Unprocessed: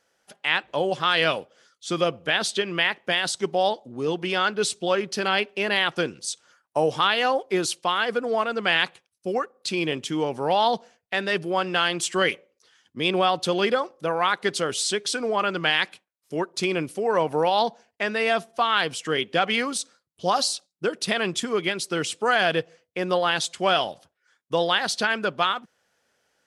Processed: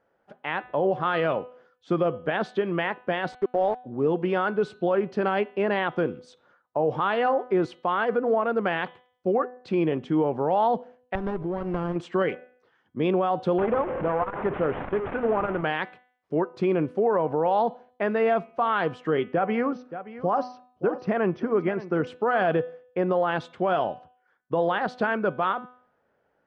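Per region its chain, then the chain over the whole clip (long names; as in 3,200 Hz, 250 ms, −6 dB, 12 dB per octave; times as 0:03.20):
0:03.32–0:03.84: high-pass filter 260 Hz + parametric band 2,000 Hz −8 dB 2.2 octaves + centre clipping without the shift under −33 dBFS
0:11.15–0:11.96: downward compressor 12 to 1, threshold −28 dBFS + high-shelf EQ 4,100 Hz +9.5 dB + windowed peak hold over 17 samples
0:13.58–0:15.63: linear delta modulator 16 kbit/s, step −26 dBFS + saturating transformer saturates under 740 Hz
0:19.33–0:22.07: linear-phase brick-wall low-pass 6,200 Hz + parametric band 3,700 Hz −14 dB 0.57 octaves + single-tap delay 574 ms −15.5 dB
whole clip: low-pass filter 1,100 Hz 12 dB per octave; hum removal 249.5 Hz, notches 17; brickwall limiter −18.5 dBFS; level +4 dB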